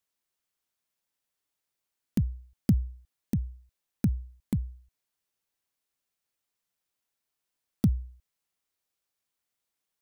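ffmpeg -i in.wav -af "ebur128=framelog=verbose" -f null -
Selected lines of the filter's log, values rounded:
Integrated loudness:
  I:         -31.5 LUFS
  Threshold: -42.7 LUFS
Loudness range:
  LRA:         5.4 LU
  Threshold: -55.9 LUFS
  LRA low:   -38.3 LUFS
  LRA high:  -32.9 LUFS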